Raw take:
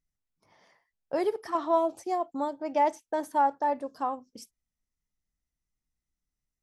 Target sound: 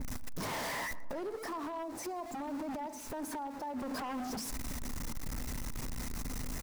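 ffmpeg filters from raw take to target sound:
ffmpeg -i in.wav -filter_complex "[0:a]aeval=exprs='val(0)+0.5*0.0158*sgn(val(0))':channel_layout=same,acompressor=threshold=-37dB:ratio=16,alimiter=level_in=14.5dB:limit=-24dB:level=0:latency=1:release=59,volume=-14.5dB,asettb=1/sr,asplit=3[link_01][link_02][link_03];[link_01]atrim=end=1.464[link_04];[link_02]atrim=start=1.46:end=3.82,asetpts=PTS-STARTPTS,afade=type=in:duration=0.004:curve=qsin,afade=type=out:start_time=2.356:duration=0.004:curve=qsin,acrossover=split=300|3000[link_05][link_06][link_07];[link_06]acompressor=threshold=-47dB:ratio=2[link_08];[link_05][link_08][link_07]amix=inputs=3:normalize=0[link_09];[link_03]atrim=start=3.816[link_10];[link_04][link_09]acrossfade=duration=0.004:curve1=hsin:curve2=qsin[link_11];[link_11][link_10]acrossfade=duration=0.004:curve1=qsin:curve2=hsin,equalizer=frequency=250:width_type=o:width=0.33:gain=10,equalizer=frequency=1000:width_type=o:width=0.33:gain=5,equalizer=frequency=3150:width_type=o:width=0.33:gain=-6,asplit=2[link_12][link_13];[link_13]adelay=118,lowpass=frequency=1300:poles=1,volume=-14dB,asplit=2[link_14][link_15];[link_15]adelay=118,lowpass=frequency=1300:poles=1,volume=0.53,asplit=2[link_16][link_17];[link_17]adelay=118,lowpass=frequency=1300:poles=1,volume=0.53,asplit=2[link_18][link_19];[link_19]adelay=118,lowpass=frequency=1300:poles=1,volume=0.53,asplit=2[link_20][link_21];[link_21]adelay=118,lowpass=frequency=1300:poles=1,volume=0.53[link_22];[link_12][link_14][link_16][link_18][link_20][link_22]amix=inputs=6:normalize=0,aeval=exprs='0.0106*(abs(mod(val(0)/0.0106+3,4)-2)-1)':channel_layout=same,adynamicequalizer=threshold=0.001:dfrequency=1900:dqfactor=0.7:tfrequency=1900:tqfactor=0.7:attack=5:release=100:ratio=0.375:range=1.5:mode=cutabove:tftype=highshelf,volume=6dB" out.wav

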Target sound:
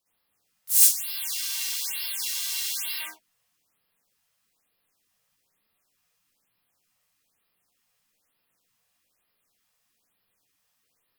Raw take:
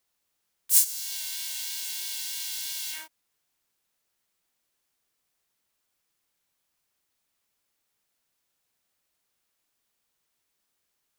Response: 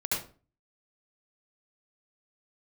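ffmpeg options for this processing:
-filter_complex "[0:a]asplit=3[link_01][link_02][link_03];[link_02]asetrate=33038,aresample=44100,atempo=1.33484,volume=-15dB[link_04];[link_03]asetrate=55563,aresample=44100,atempo=0.793701,volume=-3dB[link_05];[link_01][link_04][link_05]amix=inputs=3:normalize=0[link_06];[1:a]atrim=start_sample=2205,afade=type=out:start_time=0.2:duration=0.01,atrim=end_sample=9261,asetrate=52920,aresample=44100[link_07];[link_06][link_07]afir=irnorm=-1:irlink=0,afftfilt=real='re*(1-between(b*sr/1024,280*pow(7700/280,0.5+0.5*sin(2*PI*1.1*pts/sr))/1.41,280*pow(7700/280,0.5+0.5*sin(2*PI*1.1*pts/sr))*1.41))':imag='im*(1-between(b*sr/1024,280*pow(7700/280,0.5+0.5*sin(2*PI*1.1*pts/sr))/1.41,280*pow(7700/280,0.5+0.5*sin(2*PI*1.1*pts/sr))*1.41))':win_size=1024:overlap=0.75,volume=-1.5dB"

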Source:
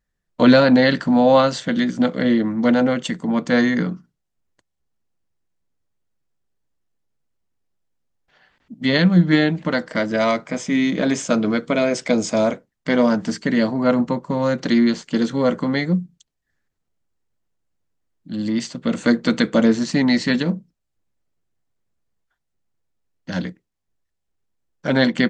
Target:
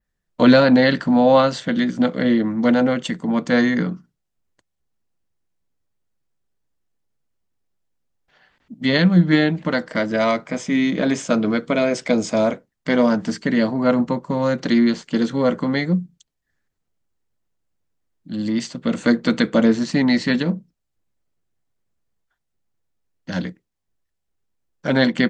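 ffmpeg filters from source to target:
ffmpeg -i in.wav -af "adynamicequalizer=threshold=0.00631:dfrequency=6900:dqfactor=1.1:tfrequency=6900:tqfactor=1.1:attack=5:release=100:ratio=0.375:range=2:mode=cutabove:tftype=bell" out.wav

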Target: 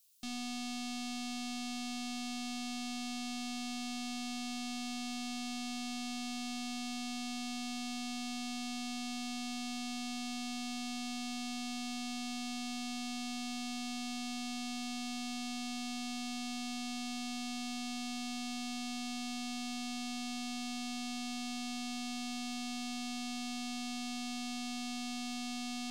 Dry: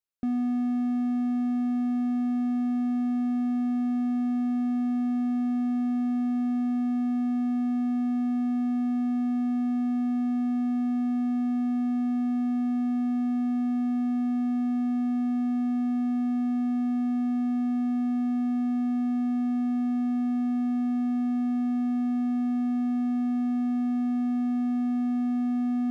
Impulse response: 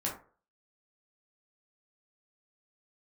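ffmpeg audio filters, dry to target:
-filter_complex "[0:a]aeval=exprs='(tanh(316*val(0)+0.5)-tanh(0.5))/316':channel_layout=same,aexciter=amount=5.2:drive=8:freq=2700,asplit=2[link_01][link_02];[1:a]atrim=start_sample=2205[link_03];[link_02][link_03]afir=irnorm=-1:irlink=0,volume=-9dB[link_04];[link_01][link_04]amix=inputs=2:normalize=0,volume=4dB"

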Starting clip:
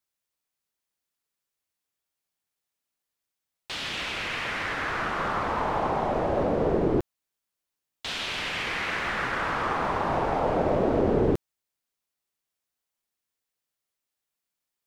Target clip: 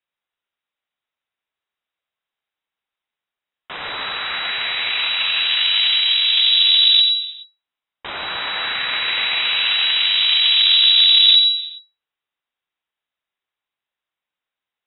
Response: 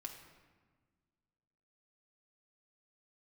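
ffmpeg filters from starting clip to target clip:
-filter_complex "[0:a]aeval=exprs='0.251*(cos(1*acos(clip(val(0)/0.251,-1,1)))-cos(1*PI/2))+0.0891*(cos(4*acos(clip(val(0)/0.251,-1,1)))-cos(4*PI/2))':channel_layout=same,asplit=2[link_01][link_02];[1:a]atrim=start_sample=2205,afade=type=out:start_time=0.4:duration=0.01,atrim=end_sample=18081,adelay=88[link_03];[link_02][link_03]afir=irnorm=-1:irlink=0,volume=-3dB[link_04];[link_01][link_04]amix=inputs=2:normalize=0,lowpass=frequency=3300:width_type=q:width=0.5098,lowpass=frequency=3300:width_type=q:width=0.6013,lowpass=frequency=3300:width_type=q:width=0.9,lowpass=frequency=3300:width_type=q:width=2.563,afreqshift=-3900,volume=4.5dB"

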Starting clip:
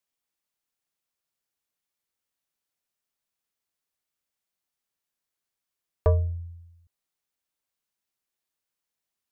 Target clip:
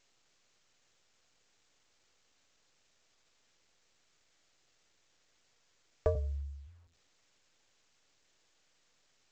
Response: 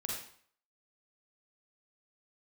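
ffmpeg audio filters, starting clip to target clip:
-filter_complex "[0:a]asettb=1/sr,asplit=3[link_01][link_02][link_03];[link_01]atrim=end=6.154[link_04];[link_02]atrim=start=6.15:end=6.67,asetpts=PTS-STARTPTS,afade=type=in:duration=0.004:curve=qsin,afade=type=out:start_time=0.516:duration=0.004:curve=qsin,afreqshift=-15[link_05];[link_03]atrim=start=6.666[link_06];[link_04][link_05]acrossfade=duration=0.004:curve1=hsin:curve2=qsin[link_07];[link_07][link_06]acrossfade=duration=0.004:curve1=qsin:curve2=hsin,lowshelf=frequency=63:gain=3.5,acrossover=split=460[link_08][link_09];[link_08]acompressor=threshold=-27dB:ratio=12[link_10];[link_10][link_09]amix=inputs=2:normalize=0,equalizer=frequency=200:width_type=o:width=0.33:gain=-7,equalizer=frequency=500:width_type=o:width=0.33:gain=5,equalizer=frequency=1000:width_type=o:width=0.33:gain=-11,asplit=2[link_11][link_12];[1:a]atrim=start_sample=2205,atrim=end_sample=6615[link_13];[link_12][link_13]afir=irnorm=-1:irlink=0,volume=-22.5dB[link_14];[link_11][link_14]amix=inputs=2:normalize=0,volume=-4.5dB" -ar 16000 -c:a pcm_alaw

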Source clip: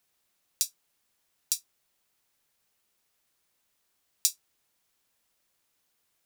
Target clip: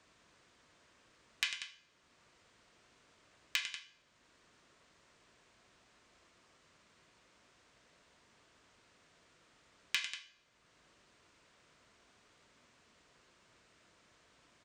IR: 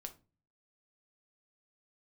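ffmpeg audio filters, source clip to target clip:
-filter_complex "[0:a]highpass=85,asplit=2[link_01][link_02];[link_02]asoftclip=type=tanh:threshold=-15.5dB,volume=-8dB[link_03];[link_01][link_03]amix=inputs=2:normalize=0,highshelf=frequency=11000:gain=-9,bandreject=frequency=1900:width=7.6,asplit=2[link_04][link_05];[1:a]atrim=start_sample=2205,asetrate=33957,aresample=44100,highshelf=frequency=12000:gain=11.5[link_06];[link_05][link_06]afir=irnorm=-1:irlink=0,volume=-4.5dB[link_07];[link_04][link_07]amix=inputs=2:normalize=0,acompressor=threshold=-37dB:ratio=6,asetrate=18846,aresample=44100,highshelf=frequency=3200:gain=-9.5,aecho=1:1:99.13|189.5:0.316|0.251,asoftclip=type=hard:threshold=-22dB,volume=7dB"

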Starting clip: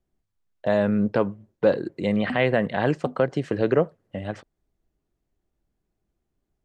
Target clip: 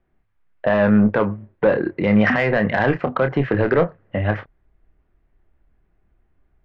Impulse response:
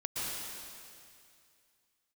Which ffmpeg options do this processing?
-filter_complex "[0:a]crystalizer=i=9:c=0,alimiter=limit=-11.5dB:level=0:latency=1:release=101,lowpass=frequency=2000:width=0.5412,lowpass=frequency=2000:width=1.3066,asoftclip=type=tanh:threshold=-15dB,asplit=2[link_01][link_02];[link_02]asubboost=boost=9:cutoff=100[link_03];[1:a]atrim=start_sample=2205,atrim=end_sample=4410,adelay=28[link_04];[link_03][link_04]afir=irnorm=-1:irlink=0,volume=-5.5dB[link_05];[link_01][link_05]amix=inputs=2:normalize=0,volume=7.5dB"

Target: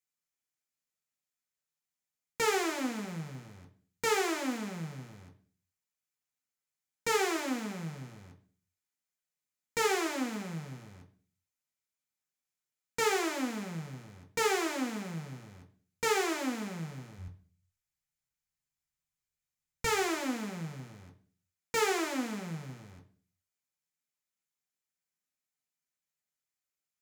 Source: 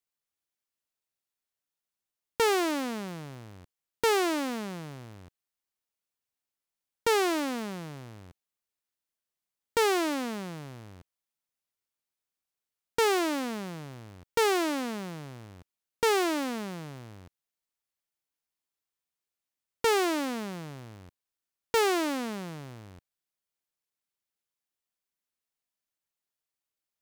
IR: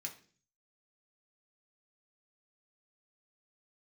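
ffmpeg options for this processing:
-filter_complex "[0:a]asplit=3[link_01][link_02][link_03];[link_01]afade=type=out:start_time=17.18:duration=0.02[link_04];[link_02]asubboost=boost=7.5:cutoff=110,afade=type=in:start_time=17.18:duration=0.02,afade=type=out:start_time=19.93:duration=0.02[link_05];[link_03]afade=type=in:start_time=19.93:duration=0.02[link_06];[link_04][link_05][link_06]amix=inputs=3:normalize=0[link_07];[1:a]atrim=start_sample=2205,asetrate=41454,aresample=44100[link_08];[link_07][link_08]afir=irnorm=-1:irlink=0"

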